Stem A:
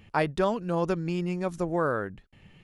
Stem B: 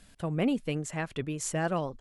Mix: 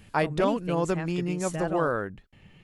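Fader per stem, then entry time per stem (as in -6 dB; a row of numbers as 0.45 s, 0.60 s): +0.5 dB, -3.5 dB; 0.00 s, 0.00 s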